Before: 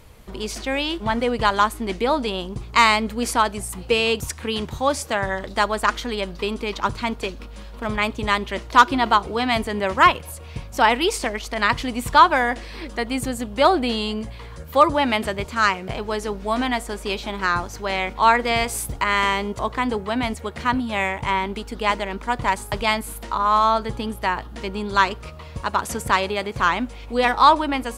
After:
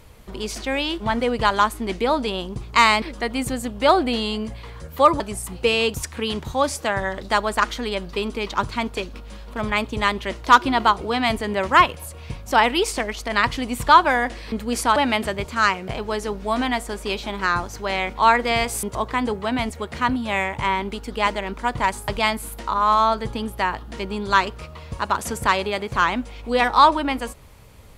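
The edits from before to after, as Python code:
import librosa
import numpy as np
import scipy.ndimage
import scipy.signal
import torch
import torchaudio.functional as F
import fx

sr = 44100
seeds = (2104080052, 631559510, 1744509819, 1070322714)

y = fx.edit(x, sr, fx.swap(start_s=3.02, length_s=0.44, other_s=12.78, other_length_s=2.18),
    fx.cut(start_s=18.83, length_s=0.64), tone=tone)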